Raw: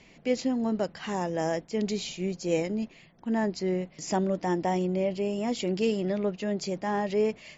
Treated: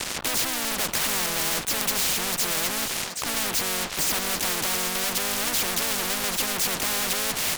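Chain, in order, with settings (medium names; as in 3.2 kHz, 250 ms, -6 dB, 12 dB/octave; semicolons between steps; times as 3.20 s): fuzz box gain 46 dB, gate -52 dBFS; harmony voices +4 st -4 dB; on a send: thinning echo 777 ms, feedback 29%, high-pass 1.1 kHz, level -18.5 dB; on the sum: spectrum-flattening compressor 4:1; trim -2 dB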